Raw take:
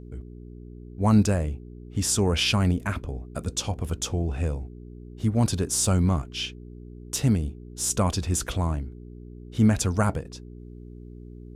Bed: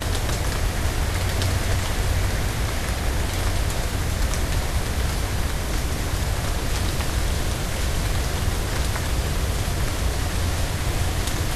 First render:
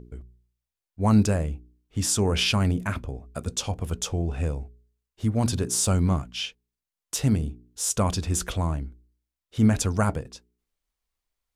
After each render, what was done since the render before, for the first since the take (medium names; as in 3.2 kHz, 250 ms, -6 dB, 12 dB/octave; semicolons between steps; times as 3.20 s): de-hum 60 Hz, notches 7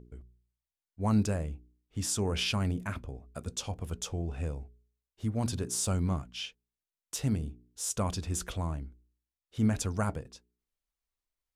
trim -7.5 dB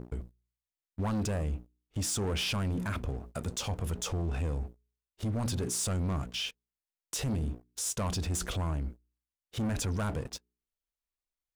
waveshaping leveller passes 3; peak limiter -27.5 dBFS, peak gain reduction 10 dB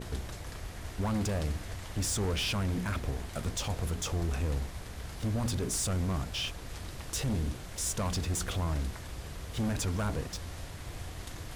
add bed -18 dB